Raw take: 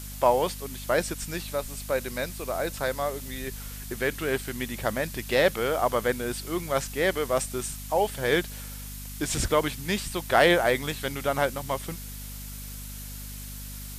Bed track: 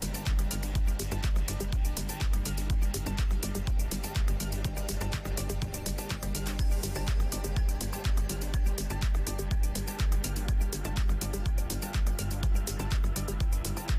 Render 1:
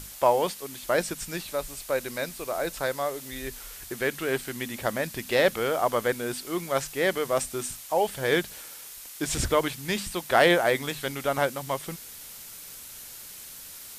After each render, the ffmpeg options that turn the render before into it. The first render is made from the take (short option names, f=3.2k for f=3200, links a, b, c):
-af "bandreject=f=50:t=h:w=6,bandreject=f=100:t=h:w=6,bandreject=f=150:t=h:w=6,bandreject=f=200:t=h:w=6,bandreject=f=250:t=h:w=6"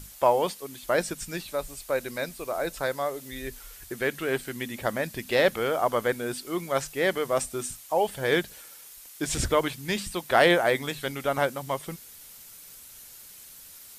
-af "afftdn=nr=6:nf=-44"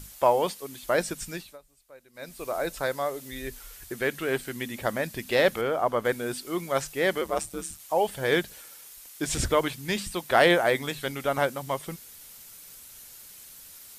-filter_complex "[0:a]asettb=1/sr,asplit=3[a][b][c];[a]atrim=end=5.614[d];[b]atrim=start=5.61:end=6.05,asetpts=PTS-STARTPTS,afade=t=in:d=0.004:c=qsin,afade=t=out:st=0.436:d=0.004:c=qsin,highshelf=f=3.2k:g=-9.5[e];[c]atrim=start=6.046[f];[d][e]acrossfade=d=0.004:c1=hsin:c2=qsin[g];[g][f]acrossfade=d=0.004:c1=qsin:c2=hsin,asettb=1/sr,asplit=3[h][i][j];[h]atrim=end=7.214[k];[i]atrim=start=7.21:end=7.8,asetpts=PTS-STARTPTS,afade=t=in:d=0.004:c=qsin,afade=t=out:st=0.586:d=0.004:c=qsin,aeval=exprs='val(0)*sin(2*PI*74*n/s)':c=same[l];[j]atrim=start=7.796[m];[k][l]acrossfade=d=0.004:c1=hsin:c2=qsin[n];[n][m]acrossfade=d=0.004:c1=qsin:c2=hsin,asplit=3[o][p][q];[o]atrim=end=1.59,asetpts=PTS-STARTPTS,afade=t=out:st=1.27:d=0.32:silence=0.0707946[r];[p]atrim=start=1.59:end=2.13,asetpts=PTS-STARTPTS,volume=-23dB[s];[q]atrim=start=2.13,asetpts=PTS-STARTPTS,afade=t=in:d=0.32:silence=0.0707946[t];[r][s][t]concat=n=3:v=0:a=1"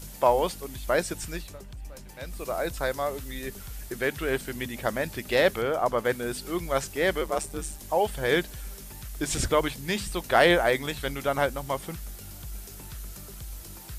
-filter_complex "[1:a]volume=-12.5dB[a];[0:a][a]amix=inputs=2:normalize=0"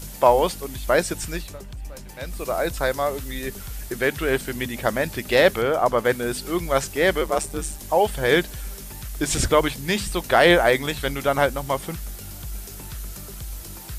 -af "volume=5.5dB,alimiter=limit=-3dB:level=0:latency=1"